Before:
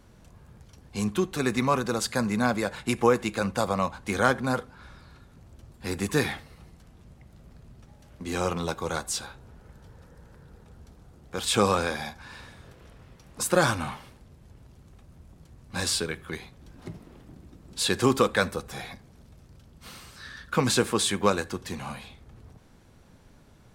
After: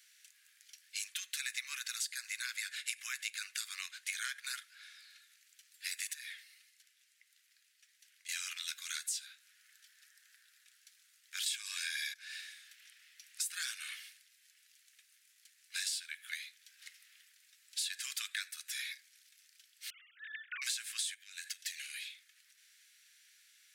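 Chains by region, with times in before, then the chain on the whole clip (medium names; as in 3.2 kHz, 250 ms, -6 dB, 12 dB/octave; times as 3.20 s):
6.13–8.29 s: compression 2.5:1, threshold -41 dBFS + flange 1.5 Hz, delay 0.4 ms, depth 6.3 ms, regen +62%
11.46–12.14 s: band-stop 1.3 kHz, Q 6.9 + comb 1.8 ms, depth 37% + level flattener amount 50%
19.90–20.62 s: formants replaced by sine waves + tilt shelf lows +9 dB, about 840 Hz
21.14–22.05 s: compression 20:1, threshold -32 dBFS + steep high-pass 1.5 kHz
whole clip: steep high-pass 1.7 kHz 48 dB/octave; treble shelf 4.2 kHz +5 dB; compression 6:1, threshold -37 dBFS; trim +1 dB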